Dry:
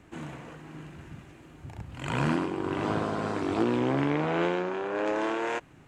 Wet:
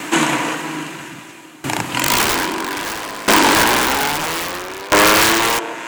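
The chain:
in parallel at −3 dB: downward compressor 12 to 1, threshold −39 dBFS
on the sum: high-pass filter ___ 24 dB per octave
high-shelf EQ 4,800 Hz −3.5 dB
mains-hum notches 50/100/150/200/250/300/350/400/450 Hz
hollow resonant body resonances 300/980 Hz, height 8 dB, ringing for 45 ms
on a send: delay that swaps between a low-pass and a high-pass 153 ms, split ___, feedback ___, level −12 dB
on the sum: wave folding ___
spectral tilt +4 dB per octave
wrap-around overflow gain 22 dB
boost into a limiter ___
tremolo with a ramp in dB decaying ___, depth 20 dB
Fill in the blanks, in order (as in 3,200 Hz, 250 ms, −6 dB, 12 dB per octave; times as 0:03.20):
120 Hz, 830 Hz, 66%, −24.5 dBFS, +25.5 dB, 0.61 Hz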